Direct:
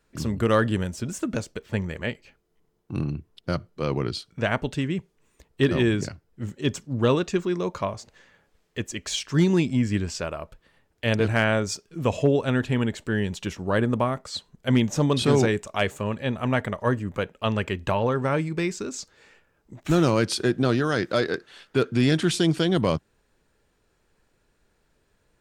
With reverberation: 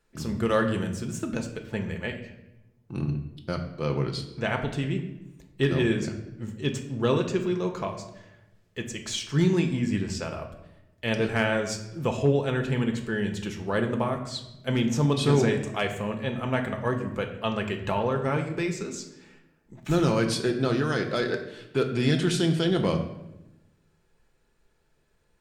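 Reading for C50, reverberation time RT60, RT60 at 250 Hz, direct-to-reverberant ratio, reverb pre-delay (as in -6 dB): 9.0 dB, 0.95 s, 1.3 s, 3.5 dB, 5 ms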